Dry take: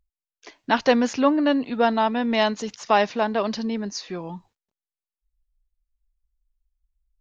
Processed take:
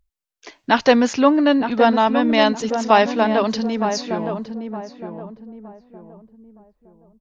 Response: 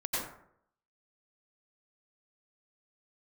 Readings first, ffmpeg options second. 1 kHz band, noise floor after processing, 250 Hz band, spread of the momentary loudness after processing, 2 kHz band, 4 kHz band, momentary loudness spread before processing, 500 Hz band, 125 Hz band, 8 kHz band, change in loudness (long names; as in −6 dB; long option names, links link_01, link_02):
+5.0 dB, −74 dBFS, +5.5 dB, 18 LU, +4.5 dB, +4.5 dB, 14 LU, +5.5 dB, +5.5 dB, can't be measured, +4.5 dB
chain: -filter_complex "[0:a]asplit=2[link_01][link_02];[link_02]adelay=915,lowpass=frequency=990:poles=1,volume=-6.5dB,asplit=2[link_03][link_04];[link_04]adelay=915,lowpass=frequency=990:poles=1,volume=0.37,asplit=2[link_05][link_06];[link_06]adelay=915,lowpass=frequency=990:poles=1,volume=0.37,asplit=2[link_07][link_08];[link_08]adelay=915,lowpass=frequency=990:poles=1,volume=0.37[link_09];[link_01][link_03][link_05][link_07][link_09]amix=inputs=5:normalize=0,volume=4.5dB"